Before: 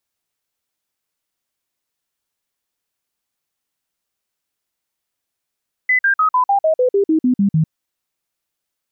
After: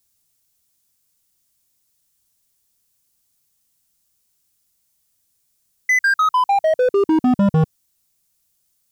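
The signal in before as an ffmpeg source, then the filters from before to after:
-f lavfi -i "aevalsrc='0.282*clip(min(mod(t,0.15),0.1-mod(t,0.15))/0.005,0,1)*sin(2*PI*2010*pow(2,-floor(t/0.15)/3)*mod(t,0.15))':d=1.8:s=44100"
-af "bass=f=250:g=13,treble=f=4k:g=14,asoftclip=type=hard:threshold=-13dB"

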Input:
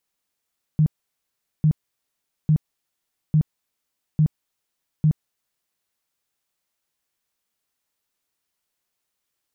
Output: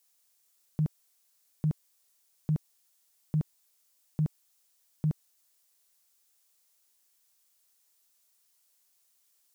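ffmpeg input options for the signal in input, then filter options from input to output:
-f lavfi -i "aevalsrc='0.224*sin(2*PI*154*mod(t,0.85))*lt(mod(t,0.85),11/154)':d=5.1:s=44100"
-af "bass=f=250:g=-11,treble=f=4k:g=11"

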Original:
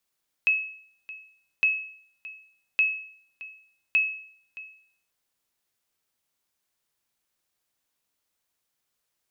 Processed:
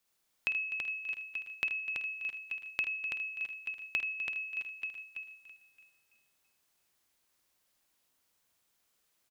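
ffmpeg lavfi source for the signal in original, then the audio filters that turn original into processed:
-f lavfi -i "aevalsrc='0.178*(sin(2*PI*2580*mod(t,1.16))*exp(-6.91*mod(t,1.16)/0.59)+0.119*sin(2*PI*2580*max(mod(t,1.16)-0.62,0))*exp(-6.91*max(mod(t,1.16)-0.62,0)/0.59))':d=4.64:s=44100"
-filter_complex "[0:a]asplit=2[a][b];[b]aecho=0:1:51|79|251|883:0.668|0.531|0.224|0.2[c];[a][c]amix=inputs=2:normalize=0,acompressor=threshold=-34dB:ratio=3,asplit=2[d][e];[e]aecho=0:1:331|662|993|1324:0.562|0.174|0.054|0.0168[f];[d][f]amix=inputs=2:normalize=0"

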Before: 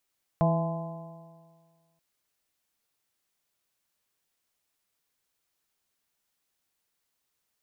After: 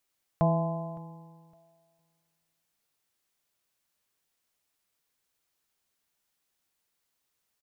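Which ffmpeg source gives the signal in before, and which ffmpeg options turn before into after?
-f lavfi -i "aevalsrc='0.0891*pow(10,-3*t/1.76)*sin(2*PI*163.23*t)+0.0188*pow(10,-3*t/1.76)*sin(2*PI*327.82*t)+0.0188*pow(10,-3*t/1.76)*sin(2*PI*495.12*t)+0.0668*pow(10,-3*t/1.76)*sin(2*PI*666.44*t)+0.0266*pow(10,-3*t/1.76)*sin(2*PI*843.04*t)+0.0251*pow(10,-3*t/1.76)*sin(2*PI*1026.11*t)':d=1.58:s=44100"
-af "aecho=1:1:562|1124:0.075|0.018"

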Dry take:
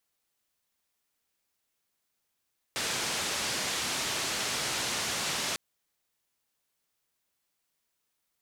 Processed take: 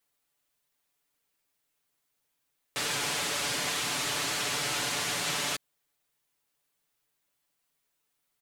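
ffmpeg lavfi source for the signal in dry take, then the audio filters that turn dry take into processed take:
-f lavfi -i "anoisesrc=c=white:d=2.8:r=44100:seed=1,highpass=f=82,lowpass=f=6700,volume=-22.2dB"
-af "equalizer=f=5.5k:t=o:w=0.77:g=-2.5,aecho=1:1:6.9:0.65"

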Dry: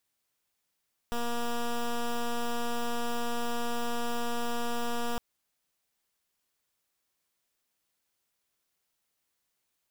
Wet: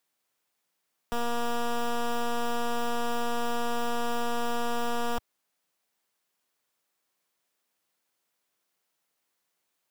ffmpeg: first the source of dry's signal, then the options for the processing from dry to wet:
-f lavfi -i "aevalsrc='0.0316*(2*lt(mod(237*t,1),0.11)-1)':d=4.06:s=44100"
-filter_complex "[0:a]equalizer=f=790:t=o:w=3:g=4,acrossover=split=100|4300[a][b][c];[a]acrusher=bits=6:mix=0:aa=0.000001[d];[d][b][c]amix=inputs=3:normalize=0"

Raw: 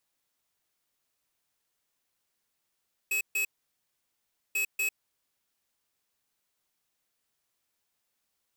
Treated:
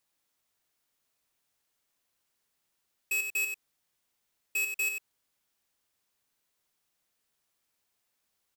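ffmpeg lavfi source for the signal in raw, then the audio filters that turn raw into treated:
-f lavfi -i "aevalsrc='0.0376*(2*lt(mod(2570*t,1),0.5)-1)*clip(min(mod(mod(t,1.44),0.24),0.1-mod(mod(t,1.44),0.24))/0.005,0,1)*lt(mod(t,1.44),0.48)':d=2.88:s=44100"
-filter_complex "[0:a]asplit=2[a][b];[b]adelay=93.29,volume=-6dB,highshelf=f=4k:g=-2.1[c];[a][c]amix=inputs=2:normalize=0"

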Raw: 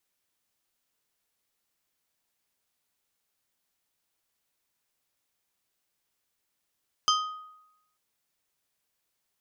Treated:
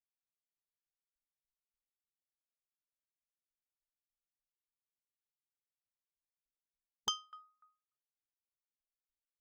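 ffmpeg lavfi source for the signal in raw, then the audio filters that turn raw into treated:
-f lavfi -i "aevalsrc='0.0944*pow(10,-3*t/0.89)*sin(2*PI*1250*t)+0.075*pow(10,-3*t/0.469)*sin(2*PI*3125*t)+0.0596*pow(10,-3*t/0.337)*sin(2*PI*5000*t)+0.0473*pow(10,-3*t/0.288)*sin(2*PI*6250*t)':d=0.89:s=44100"
-af "afftfilt=real='re*pow(10,18/40*sin(2*PI*(0.96*log(max(b,1)*sr/1024/100)/log(2)-(0.39)*(pts-256)/sr)))':imag='im*pow(10,18/40*sin(2*PI*(0.96*log(max(b,1)*sr/1024/100)/log(2)-(0.39)*(pts-256)/sr)))':win_size=1024:overlap=0.75,anlmdn=0.0001,aeval=exprs='val(0)*pow(10,-30*if(lt(mod(3.4*n/s,1),2*abs(3.4)/1000),1-mod(3.4*n/s,1)/(2*abs(3.4)/1000),(mod(3.4*n/s,1)-2*abs(3.4)/1000)/(1-2*abs(3.4)/1000))/20)':c=same"

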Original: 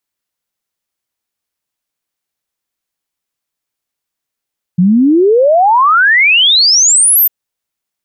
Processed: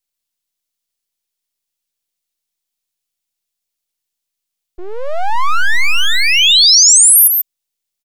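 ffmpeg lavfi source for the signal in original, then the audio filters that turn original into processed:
-f lavfi -i "aevalsrc='0.562*clip(min(t,2.5-t)/0.01,0,1)*sin(2*PI*170*2.5/log(14000/170)*(exp(log(14000/170)*t/2.5)-1))':d=2.5:s=44100"
-filter_complex "[0:a]highpass=430,acrossover=split=2400[a][b];[a]aeval=exprs='abs(val(0))':c=same[c];[b]aecho=1:1:139:0.562[d];[c][d]amix=inputs=2:normalize=0"

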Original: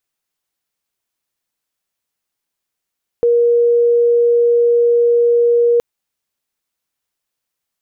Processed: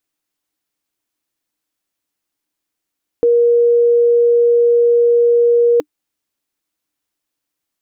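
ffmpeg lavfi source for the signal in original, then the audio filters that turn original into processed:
-f lavfi -i "aevalsrc='0.355*sin(2*PI*474*t)':d=2.57:s=44100"
-af "equalizer=f=300:w=5:g=12"

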